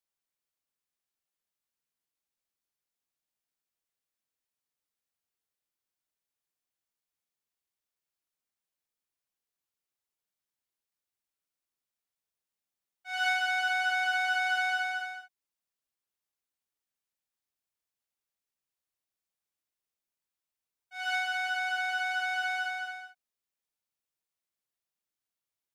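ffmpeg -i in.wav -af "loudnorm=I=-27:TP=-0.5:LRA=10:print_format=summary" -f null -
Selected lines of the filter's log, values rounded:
Input Integrated:    -29.8 LUFS
Input True Peak:     -17.7 dBTP
Input LRA:            21.1 LU
Input Threshold:     -40.9 LUFS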